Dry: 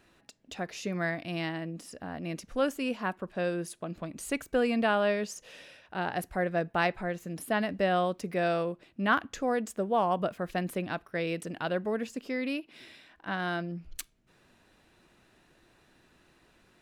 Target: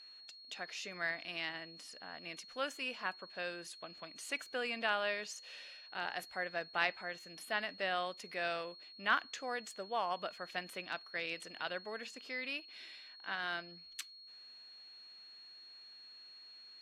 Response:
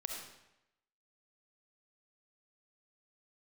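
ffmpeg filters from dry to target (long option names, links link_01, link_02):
-af "bandpass=frequency=3000:width_type=q:width=0.66:csg=0,aeval=exprs='val(0)+0.00251*sin(2*PI*4300*n/s)':channel_layout=same,volume=-1dB" -ar 44100 -c:a aac -b:a 64k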